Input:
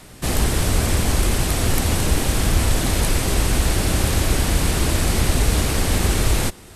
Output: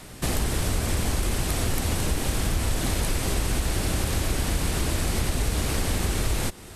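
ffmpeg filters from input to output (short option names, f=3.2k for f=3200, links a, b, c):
-af "acompressor=threshold=-23dB:ratio=3"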